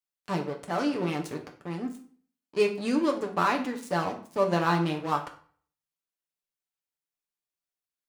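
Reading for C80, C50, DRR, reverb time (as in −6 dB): 15.0 dB, 10.5 dB, 1.5 dB, 0.45 s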